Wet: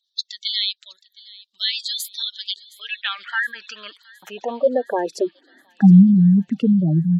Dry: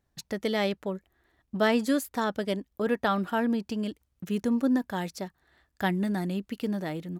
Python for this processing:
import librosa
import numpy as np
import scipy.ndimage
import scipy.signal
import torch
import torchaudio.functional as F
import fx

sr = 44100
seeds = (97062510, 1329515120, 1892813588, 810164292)

p1 = fx.filter_sweep_highpass(x, sr, from_hz=3800.0, to_hz=160.0, start_s=2.63, end_s=6.1, q=5.4)
p2 = fx.spec_gate(p1, sr, threshold_db=-15, keep='strong')
p3 = p2 + fx.echo_wet_highpass(p2, sr, ms=717, feedback_pct=59, hz=2200.0, wet_db=-20, dry=0)
y = p3 * 10.0 ** (7.5 / 20.0)